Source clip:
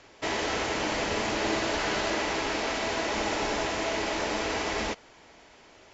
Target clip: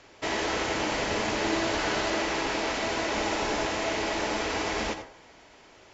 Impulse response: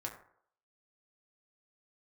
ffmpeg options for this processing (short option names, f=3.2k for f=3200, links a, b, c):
-filter_complex "[0:a]asplit=2[a][b];[1:a]atrim=start_sample=2205,adelay=85[c];[b][c]afir=irnorm=-1:irlink=0,volume=-8.5dB[d];[a][d]amix=inputs=2:normalize=0"